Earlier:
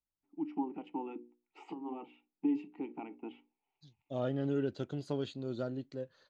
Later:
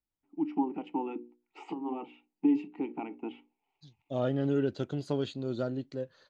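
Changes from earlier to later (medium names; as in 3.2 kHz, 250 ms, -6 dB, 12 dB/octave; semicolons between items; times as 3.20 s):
first voice +6.0 dB; second voice +4.5 dB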